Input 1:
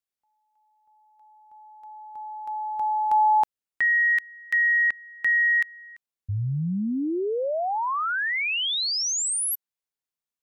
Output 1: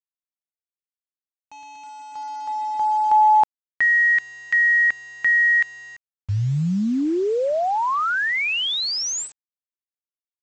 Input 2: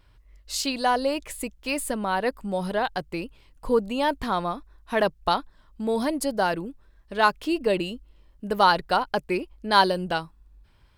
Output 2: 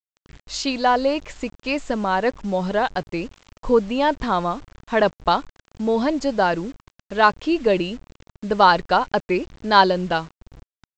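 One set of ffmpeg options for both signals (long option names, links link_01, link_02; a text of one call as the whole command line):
ffmpeg -i in.wav -af "aresample=16000,acrusher=bits=7:mix=0:aa=0.000001,aresample=44100,highshelf=frequency=3900:gain=-6,volume=5dB" out.wav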